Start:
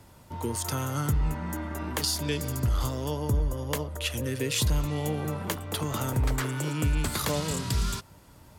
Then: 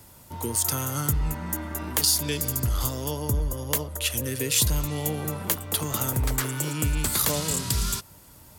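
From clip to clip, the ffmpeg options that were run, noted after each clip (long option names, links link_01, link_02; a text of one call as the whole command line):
ffmpeg -i in.wav -af "aemphasis=mode=production:type=50kf" out.wav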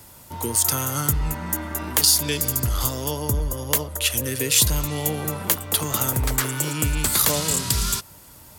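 ffmpeg -i in.wav -af "lowshelf=frequency=470:gain=-3.5,volume=5dB" out.wav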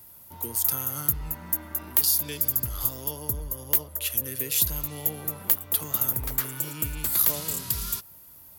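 ffmpeg -i in.wav -af "aexciter=amount=6.2:drive=1:freq=11000,volume=-11dB" out.wav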